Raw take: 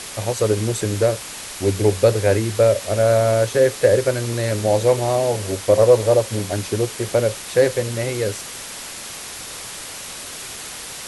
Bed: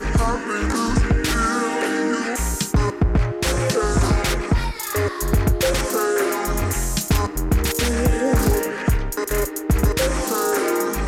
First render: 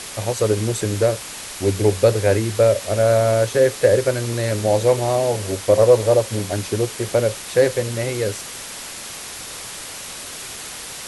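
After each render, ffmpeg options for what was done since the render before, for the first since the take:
ffmpeg -i in.wav -af anull out.wav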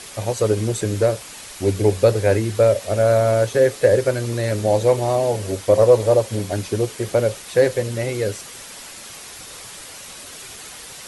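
ffmpeg -i in.wav -af "afftdn=noise_reduction=6:noise_floor=-34" out.wav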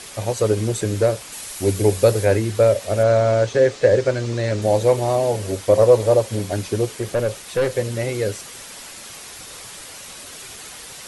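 ffmpeg -i in.wav -filter_complex "[0:a]asettb=1/sr,asplit=3[link_01][link_02][link_03];[link_01]atrim=end=1.324[link_04];[link_02]atrim=start=1.32:end=2.25,asetpts=PTS-STARTPTS,afade=type=in:duration=0.004:curve=qsin,afade=type=out:start_time=0.926:duration=0.004:curve=qsin,highshelf=frequency=8700:gain=11[link_05];[link_03]atrim=start=2.246[link_06];[link_04][link_05]acrossfade=duration=0.004:curve1=hsin:curve2=qsin[link_07];[link_07][link_06]acrossfade=duration=0.004:curve1=qsin:curve2=hsin,asettb=1/sr,asplit=3[link_08][link_09][link_10];[link_08]atrim=end=3.034[link_11];[link_09]atrim=start=3.03:end=4.62,asetpts=PTS-STARTPTS,afade=type=in:duration=0.004:curve=qsin,afade=type=out:start_time=1.586:duration=0.004:curve=qsin,lowpass=frequency=7200:width=0.5412,lowpass=frequency=7200:width=1.3066[link_12];[link_10]atrim=start=4.616[link_13];[link_11][link_12]acrossfade=duration=0.004:curve1=hsin:curve2=qsin[link_14];[link_14][link_13]acrossfade=duration=0.004:curve1=qsin:curve2=hsin,asettb=1/sr,asplit=3[link_15][link_16][link_17];[link_15]atrim=end=6.984[link_18];[link_16]atrim=start=6.98:end=7.75,asetpts=PTS-STARTPTS,afade=type=in:duration=0.004:curve=qsin,afade=type=out:start_time=0.766:duration=0.004:curve=qsin,aeval=exprs='(tanh(5.01*val(0)+0.25)-tanh(0.25))/5.01':channel_layout=same[link_19];[link_17]atrim=start=7.746[link_20];[link_18][link_19]acrossfade=duration=0.004:curve1=hsin:curve2=qsin[link_21];[link_21][link_20]acrossfade=duration=0.004:curve1=qsin:curve2=hsin" out.wav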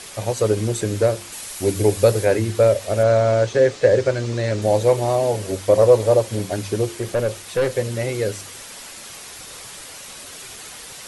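ffmpeg -i in.wav -af "bandreject=frequency=49.62:width_type=h:width=4,bandreject=frequency=99.24:width_type=h:width=4,bandreject=frequency=148.86:width_type=h:width=4,bandreject=frequency=198.48:width_type=h:width=4,bandreject=frequency=248.1:width_type=h:width=4,bandreject=frequency=297.72:width_type=h:width=4,bandreject=frequency=347.34:width_type=h:width=4" out.wav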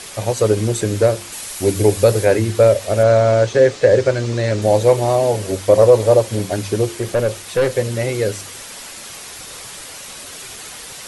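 ffmpeg -i in.wav -af "volume=3.5dB,alimiter=limit=-1dB:level=0:latency=1" out.wav

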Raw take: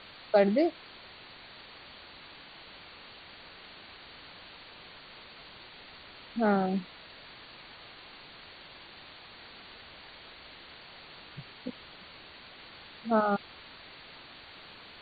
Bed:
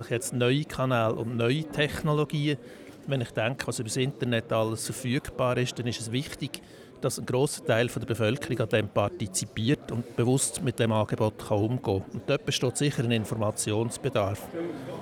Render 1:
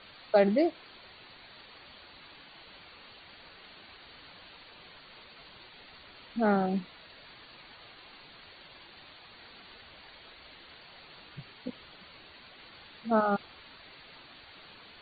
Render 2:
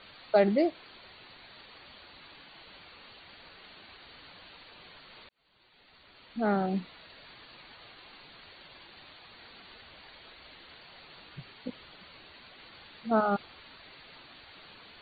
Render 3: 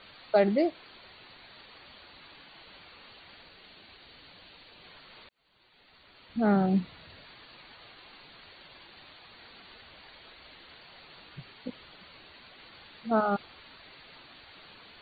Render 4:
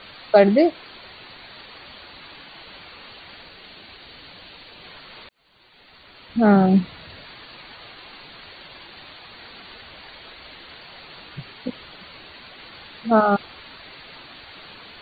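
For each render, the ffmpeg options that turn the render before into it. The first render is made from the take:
ffmpeg -i in.wav -af "afftdn=noise_reduction=6:noise_floor=-51" out.wav
ffmpeg -i in.wav -filter_complex "[0:a]asplit=2[link_01][link_02];[link_01]atrim=end=5.29,asetpts=PTS-STARTPTS,afade=type=out:start_time=5.286:duration=0.004:curve=hsin[link_03];[link_02]atrim=start=5.29,asetpts=PTS-STARTPTS,afade=type=in:duration=1.49[link_04];[link_03][link_04]concat=n=2:v=0:a=1" out.wav
ffmpeg -i in.wav -filter_complex "[0:a]asettb=1/sr,asplit=3[link_01][link_02][link_03];[link_01]atrim=end=3.434[link_04];[link_02]atrim=start=3.43:end=4.84,asetpts=PTS-STARTPTS,afade=type=in:duration=0.004:curve=qsin,afade=type=out:start_time=1.406:duration=0.004:curve=qsin,equalizer=frequency=1200:width=0.83:gain=-4[link_05];[link_03]atrim=start=4.836[link_06];[link_04][link_05]acrossfade=duration=0.004:curve1=hsin:curve2=qsin[link_07];[link_07][link_06]acrossfade=duration=0.004:curve1=qsin:curve2=hsin,asettb=1/sr,asplit=3[link_08][link_09][link_10];[link_08]atrim=end=6.294[link_11];[link_09]atrim=start=6.29:end=7.23,asetpts=PTS-STARTPTS,afade=type=in:duration=0.004:curve=qsin,afade=type=out:start_time=0.936:duration=0.004:curve=qsin,equalizer=frequency=99:width_type=o:width=1.9:gain=12.5[link_12];[link_10]atrim=start=7.226[link_13];[link_11][link_12]acrossfade=duration=0.004:curve1=hsin:curve2=qsin[link_14];[link_14][link_13]acrossfade=duration=0.004:curve1=qsin:curve2=hsin" out.wav
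ffmpeg -i in.wav -af "volume=9.5dB" out.wav

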